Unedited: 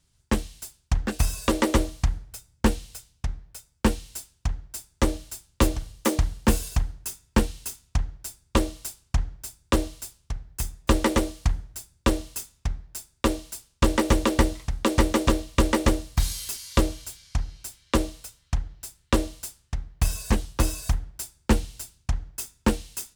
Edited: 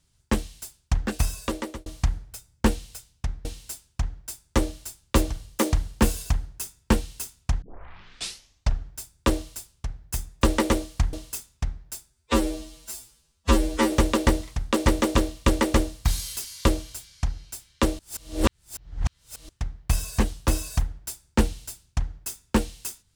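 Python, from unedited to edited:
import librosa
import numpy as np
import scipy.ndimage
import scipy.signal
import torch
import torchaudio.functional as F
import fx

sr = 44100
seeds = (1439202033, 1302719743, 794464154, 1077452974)

y = fx.edit(x, sr, fx.fade_out_span(start_s=1.15, length_s=0.71),
    fx.cut(start_s=3.45, length_s=0.46),
    fx.tape_start(start_s=8.08, length_s=1.26),
    fx.cut(start_s=11.59, length_s=0.57),
    fx.stretch_span(start_s=13.13, length_s=0.91, factor=2.0),
    fx.reverse_span(start_s=18.11, length_s=1.5), tone=tone)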